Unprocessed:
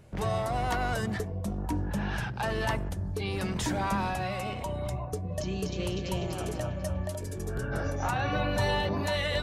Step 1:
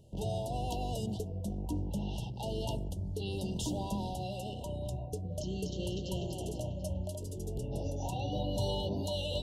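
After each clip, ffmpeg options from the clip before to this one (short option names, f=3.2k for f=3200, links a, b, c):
-af "equalizer=f=950:w=2.4:g=-8.5,afftfilt=real='re*(1-between(b*sr/4096,1000,2700))':imag='im*(1-between(b*sr/4096,1000,2700))':win_size=4096:overlap=0.75,volume=-4dB"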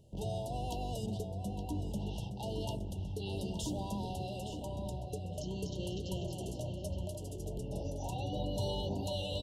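-filter_complex "[0:a]asplit=2[a][b];[b]adelay=867,lowpass=f=4.9k:p=1,volume=-8dB,asplit=2[c][d];[d]adelay=867,lowpass=f=4.9k:p=1,volume=0.24,asplit=2[e][f];[f]adelay=867,lowpass=f=4.9k:p=1,volume=0.24[g];[a][c][e][g]amix=inputs=4:normalize=0,volume=-2.5dB"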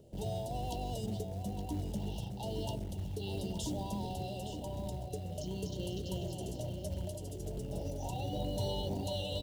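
-filter_complex "[0:a]acrossover=split=270|620|2600[a][b][c][d];[b]acompressor=mode=upward:threshold=-54dB:ratio=2.5[e];[a][e][c][d]amix=inputs=4:normalize=0,acrusher=bits=6:mode=log:mix=0:aa=0.000001"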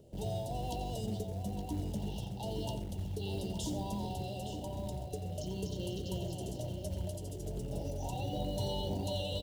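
-filter_complex "[0:a]asplit=2[a][b];[b]adelay=87.46,volume=-11dB,highshelf=f=4k:g=-1.97[c];[a][c]amix=inputs=2:normalize=0"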